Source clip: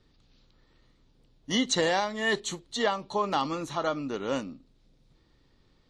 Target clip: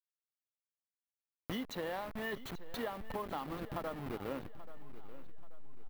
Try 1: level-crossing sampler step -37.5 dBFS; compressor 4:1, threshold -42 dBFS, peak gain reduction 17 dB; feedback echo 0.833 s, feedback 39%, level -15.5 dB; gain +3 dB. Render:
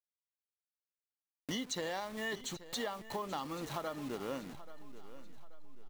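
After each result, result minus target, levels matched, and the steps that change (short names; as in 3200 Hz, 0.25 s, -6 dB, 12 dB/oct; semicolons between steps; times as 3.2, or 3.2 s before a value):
8000 Hz band +11.0 dB; level-crossing sampler: distortion -9 dB
add after compressor: bell 6900 Hz -14 dB 1.4 oct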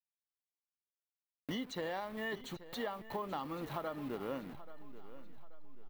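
level-crossing sampler: distortion -9 dB
change: level-crossing sampler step -29 dBFS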